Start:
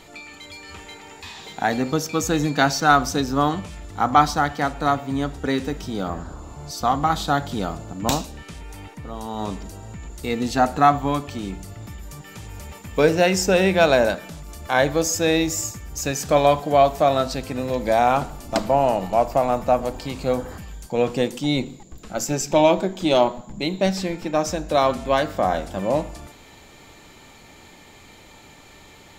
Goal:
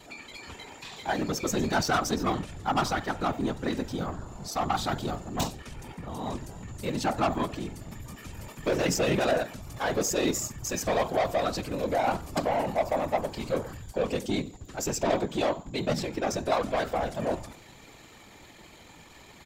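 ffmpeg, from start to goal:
ffmpeg -i in.wav -af "asoftclip=type=tanh:threshold=-16.5dB,afftfilt=real='hypot(re,im)*cos(2*PI*random(0))':imag='hypot(re,im)*sin(2*PI*random(1))':win_size=512:overlap=0.75,atempo=1.5,volume=2.5dB" out.wav

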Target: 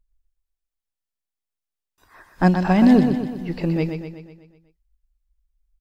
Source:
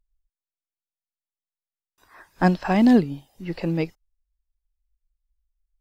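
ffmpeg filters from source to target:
ffmpeg -i in.wav -af "lowshelf=frequency=180:gain=6,aecho=1:1:124|248|372|496|620|744|868:0.447|0.241|0.13|0.0703|0.038|0.0205|0.0111" out.wav

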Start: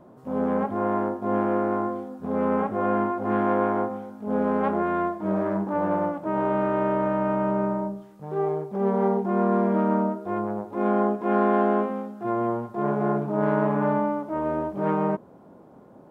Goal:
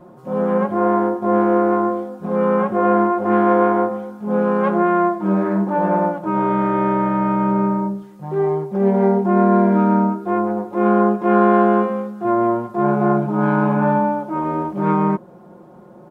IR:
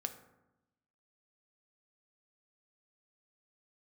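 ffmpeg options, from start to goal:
-af "aecho=1:1:5.6:0.88,volume=4dB"

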